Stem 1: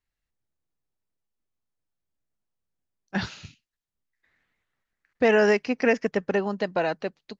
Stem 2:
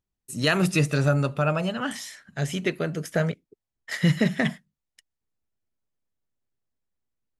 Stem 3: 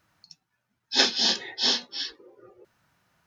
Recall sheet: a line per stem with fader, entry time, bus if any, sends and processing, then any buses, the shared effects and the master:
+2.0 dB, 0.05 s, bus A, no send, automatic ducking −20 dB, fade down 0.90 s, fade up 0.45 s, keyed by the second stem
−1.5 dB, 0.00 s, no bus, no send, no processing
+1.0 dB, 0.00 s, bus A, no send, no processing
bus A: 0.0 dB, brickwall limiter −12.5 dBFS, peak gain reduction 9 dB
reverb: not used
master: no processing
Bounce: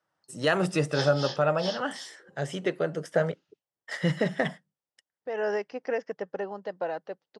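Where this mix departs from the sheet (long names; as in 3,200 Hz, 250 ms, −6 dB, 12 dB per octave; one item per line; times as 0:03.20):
stem 1 +2.0 dB → −9.5 dB
stem 3 +1.0 dB → −10.0 dB
master: extra loudspeaker in its box 180–8,500 Hz, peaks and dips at 230 Hz −8 dB, 530 Hz +6 dB, 800 Hz +4 dB, 2,400 Hz −9 dB, 4,100 Hz −7 dB, 6,700 Hz −8 dB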